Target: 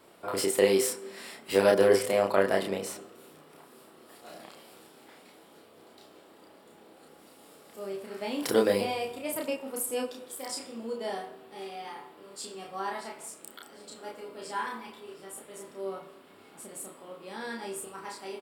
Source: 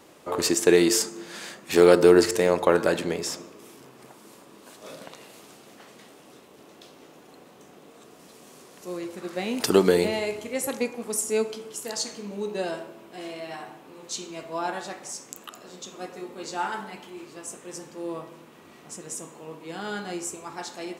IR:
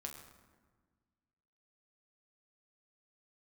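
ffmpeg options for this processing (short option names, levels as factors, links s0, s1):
-filter_complex "[0:a]equalizer=f=5500:t=o:w=0.21:g=-12.5,asetrate=50274,aresample=44100,asplit=2[s0][s1];[s1]adelay=31,volume=0.794[s2];[s0][s2]amix=inputs=2:normalize=0,volume=0.473"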